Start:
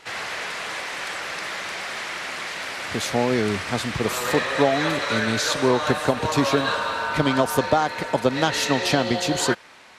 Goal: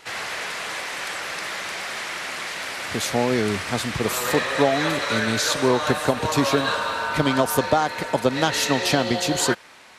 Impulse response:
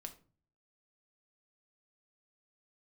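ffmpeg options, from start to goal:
-af "highshelf=f=9500:g=8"

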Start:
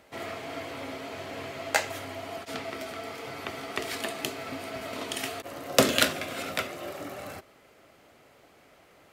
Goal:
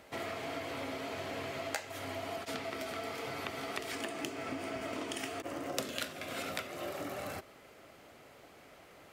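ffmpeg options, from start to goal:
-filter_complex "[0:a]asettb=1/sr,asplit=3[s0][s1][s2];[s0]atrim=end=3.914[s3];[s1]atrim=start=3.91:end=5.78,asetpts=PTS-STARTPTS,afade=t=in:d=0.004:c=qsin,afade=t=out:st=1.866:d=0.004:c=qsin,equalizer=f=315:t=o:w=0.33:g=8,equalizer=f=4000:t=o:w=0.33:g=-7,equalizer=f=12500:t=o:w=0.33:g=-11[s4];[s2]atrim=start=5.776[s5];[s3][s4]acrossfade=d=0.004:c1=hsin:c2=qsin[s6];[s6][s5]acrossfade=d=0.004:c1=qsin:c2=hsin,acompressor=threshold=0.0141:ratio=5,volume=1.12"

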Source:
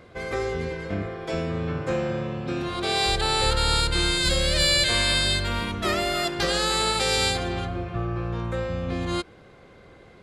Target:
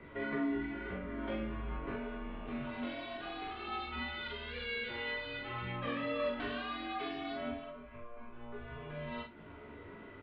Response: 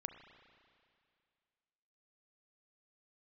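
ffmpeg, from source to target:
-filter_complex "[0:a]asplit=3[s0][s1][s2];[s0]afade=t=out:st=7.5:d=0.02[s3];[s1]asubboost=boost=11:cutoff=66,afade=t=in:st=7.5:d=0.02,afade=t=out:st=8.58:d=0.02[s4];[s2]afade=t=in:st=8.58:d=0.02[s5];[s3][s4][s5]amix=inputs=3:normalize=0,acompressor=threshold=0.0178:ratio=6,flanger=delay=0.4:depth=5.4:regen=63:speed=0.88:shape=sinusoidal,asettb=1/sr,asplit=3[s6][s7][s8];[s6]atrim=end=2.264[s9];[s7]atrim=start=2.26:end=3.65,asetpts=PTS-STARTPTS,afade=t=in:d=0.004:c=qsin,afade=t=out:st=1.386:d=0.004:c=qsin,aeval=exprs='clip(val(0),-1,0.00668)':c=same[s10];[s8]atrim=start=3.646[s11];[s9][s10]acrossfade=d=0.004:c1=hsin:c2=qsin[s12];[s12][s11]acrossfade=d=0.004:c1=qsin:c2=hsin,flanger=delay=15:depth=5.6:speed=0.21,asplit=2[s13][s14];[s14]adelay=43,volume=0.75[s15];[s13][s15]amix=inputs=2:normalize=0,aecho=1:1:33|67:0.335|0.133,highpass=f=160:t=q:w=0.5412,highpass=f=160:t=q:w=1.307,lowpass=f=3200:t=q:w=0.5176,lowpass=f=3200:t=q:w=0.7071,lowpass=f=3200:t=q:w=1.932,afreqshift=-110,volume=1.78"

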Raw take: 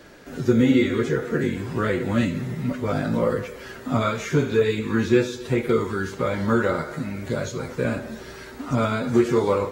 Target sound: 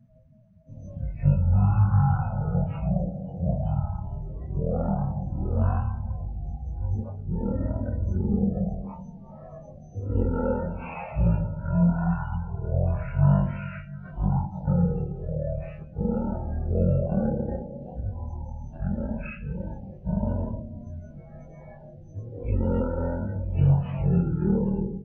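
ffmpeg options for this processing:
-af "afftdn=nr=29:nf=-40,asetrate=17111,aresample=44100,volume=0.708"

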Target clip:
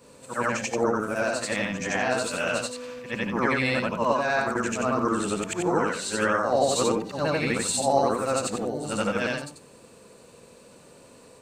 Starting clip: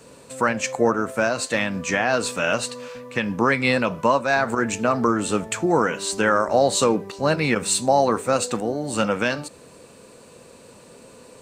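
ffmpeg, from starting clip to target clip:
-af "afftfilt=real='re':imag='-im':win_size=8192:overlap=0.75,tremolo=f=190:d=0.182,volume=1.12"

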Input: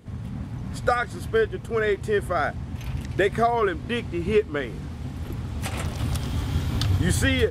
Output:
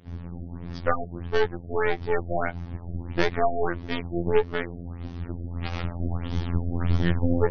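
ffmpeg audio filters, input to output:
-af "aeval=exprs='0.501*(cos(1*acos(clip(val(0)/0.501,-1,1)))-cos(1*PI/2))+0.0794*(cos(8*acos(clip(val(0)/0.501,-1,1)))-cos(8*PI/2))':c=same,afftfilt=real='hypot(re,im)*cos(PI*b)':imag='0':win_size=2048:overlap=0.75,afftfilt=real='re*lt(b*sr/1024,730*pow(6500/730,0.5+0.5*sin(2*PI*1.6*pts/sr)))':imag='im*lt(b*sr/1024,730*pow(6500/730,0.5+0.5*sin(2*PI*1.6*pts/sr)))':win_size=1024:overlap=0.75"

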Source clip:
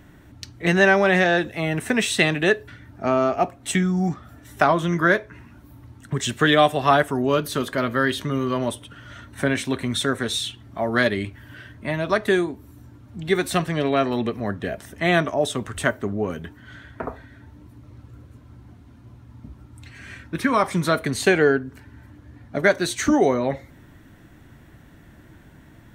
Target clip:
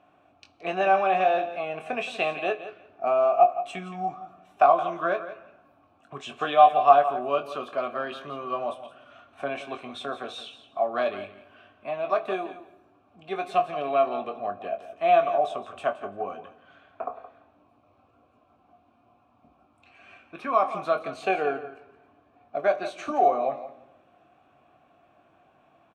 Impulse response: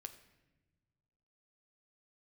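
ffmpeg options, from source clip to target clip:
-filter_complex "[0:a]asplit=3[s0][s1][s2];[s0]bandpass=f=730:t=q:w=8,volume=1[s3];[s1]bandpass=f=1090:t=q:w=8,volume=0.501[s4];[s2]bandpass=f=2440:t=q:w=8,volume=0.355[s5];[s3][s4][s5]amix=inputs=3:normalize=0,aecho=1:1:171|342:0.224|0.0336,asplit=2[s6][s7];[1:a]atrim=start_sample=2205,asetrate=37926,aresample=44100,adelay=21[s8];[s7][s8]afir=irnorm=-1:irlink=0,volume=0.708[s9];[s6][s9]amix=inputs=2:normalize=0,volume=1.88"

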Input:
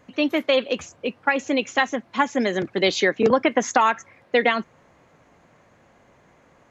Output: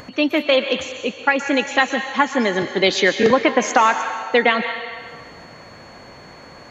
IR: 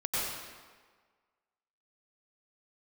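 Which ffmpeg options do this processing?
-filter_complex "[0:a]acompressor=mode=upward:threshold=0.02:ratio=2.5,aeval=exprs='val(0)+0.00251*sin(2*PI*4400*n/s)':c=same,asplit=2[s0][s1];[s1]tiltshelf=f=640:g=-8.5[s2];[1:a]atrim=start_sample=2205,asetrate=31752,aresample=44100,lowpass=6800[s3];[s2][s3]afir=irnorm=-1:irlink=0,volume=0.0944[s4];[s0][s4]amix=inputs=2:normalize=0,volume=1.33"

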